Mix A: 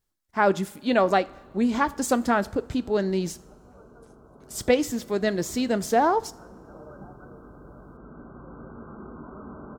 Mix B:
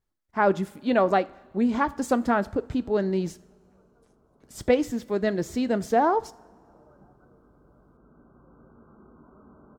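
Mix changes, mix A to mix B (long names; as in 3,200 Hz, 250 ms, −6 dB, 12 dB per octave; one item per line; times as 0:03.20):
background −11.5 dB
master: add high-shelf EQ 3,100 Hz −10 dB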